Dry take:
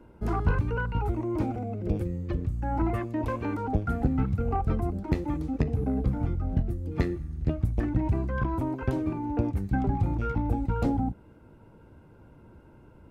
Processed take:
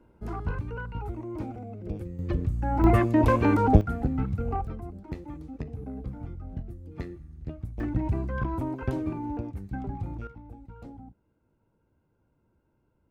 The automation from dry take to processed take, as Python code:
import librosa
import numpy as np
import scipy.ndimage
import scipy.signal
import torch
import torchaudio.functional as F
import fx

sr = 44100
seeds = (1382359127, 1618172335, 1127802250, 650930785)

y = fx.gain(x, sr, db=fx.steps((0.0, -6.5), (2.19, 2.0), (2.84, 9.0), (3.81, -2.0), (4.67, -10.0), (7.8, -1.5), (9.37, -8.0), (10.27, -18.5)))